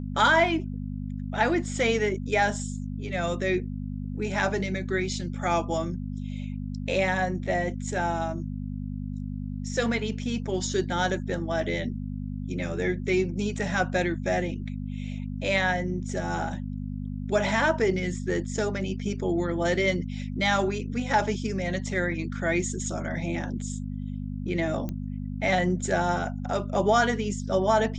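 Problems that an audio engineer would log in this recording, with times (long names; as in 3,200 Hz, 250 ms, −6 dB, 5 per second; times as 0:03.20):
mains hum 50 Hz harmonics 5 −33 dBFS
0:24.89: click −20 dBFS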